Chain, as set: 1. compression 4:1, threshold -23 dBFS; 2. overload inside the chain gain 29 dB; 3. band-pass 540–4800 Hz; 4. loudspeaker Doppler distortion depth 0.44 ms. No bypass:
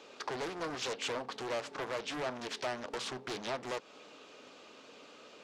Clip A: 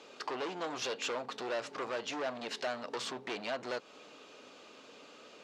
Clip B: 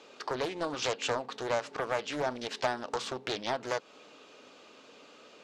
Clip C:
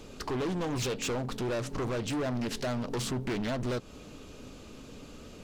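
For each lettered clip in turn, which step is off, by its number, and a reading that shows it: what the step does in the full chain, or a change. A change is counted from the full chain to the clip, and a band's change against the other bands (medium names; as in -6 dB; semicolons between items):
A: 4, 125 Hz band -6.0 dB; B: 2, distortion -6 dB; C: 3, 125 Hz band +15.0 dB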